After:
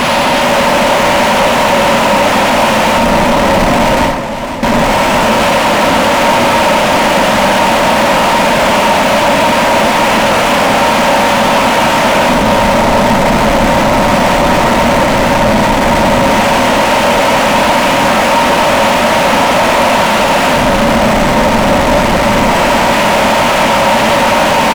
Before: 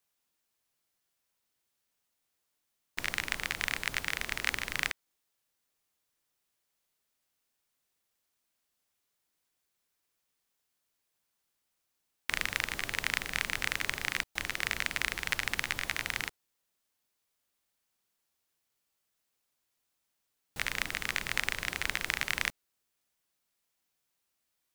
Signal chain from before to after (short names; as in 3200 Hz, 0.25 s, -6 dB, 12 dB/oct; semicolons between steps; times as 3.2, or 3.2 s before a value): delta modulation 16 kbps, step -26 dBFS; echo 0.417 s -7 dB; fuzz box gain 45 dB, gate -52 dBFS; 3.96–4.63 gate with hold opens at -9 dBFS; bell 760 Hz +7 dB 0.45 oct; small resonant body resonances 230/560/920 Hz, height 14 dB, ringing for 40 ms; reverb RT60 0.60 s, pre-delay 5 ms, DRR 3 dB; soft clip -5 dBFS, distortion -13 dB; warbling echo 0.503 s, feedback 48%, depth 131 cents, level -10.5 dB